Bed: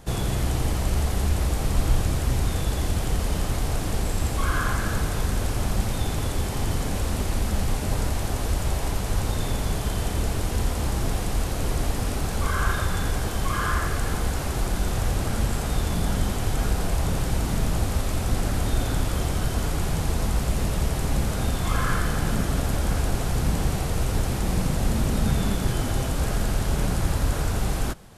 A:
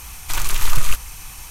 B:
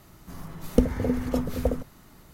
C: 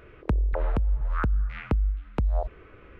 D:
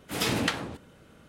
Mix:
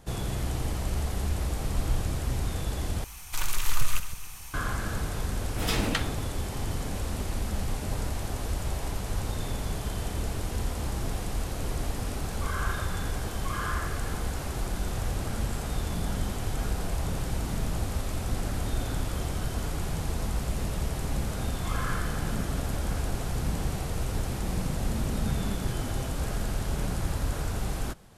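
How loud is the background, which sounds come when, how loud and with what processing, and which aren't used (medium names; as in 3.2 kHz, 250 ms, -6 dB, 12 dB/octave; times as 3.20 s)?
bed -6 dB
3.04 s: replace with A -7.5 dB + backward echo that repeats 137 ms, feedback 46%, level -11 dB
5.47 s: add D -2 dB
not used: B, C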